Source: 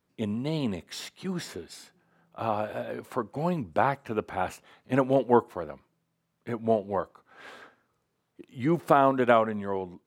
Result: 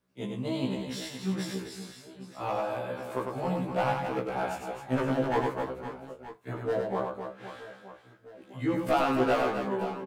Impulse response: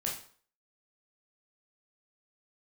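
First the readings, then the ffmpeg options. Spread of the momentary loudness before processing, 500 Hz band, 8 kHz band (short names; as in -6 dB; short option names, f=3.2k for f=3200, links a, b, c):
19 LU, -3.0 dB, n/a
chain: -filter_complex "[0:a]volume=18dB,asoftclip=hard,volume=-18dB,aecho=1:1:100|260|516|925.6|1581:0.631|0.398|0.251|0.158|0.1,asplit=2[a][b];[1:a]atrim=start_sample=2205,afade=t=out:st=0.13:d=0.01,atrim=end_sample=6174[c];[b][c]afir=irnorm=-1:irlink=0,volume=-11dB[d];[a][d]amix=inputs=2:normalize=0,afftfilt=real='re*1.73*eq(mod(b,3),0)':imag='im*1.73*eq(mod(b,3),0)':win_size=2048:overlap=0.75,volume=-2dB"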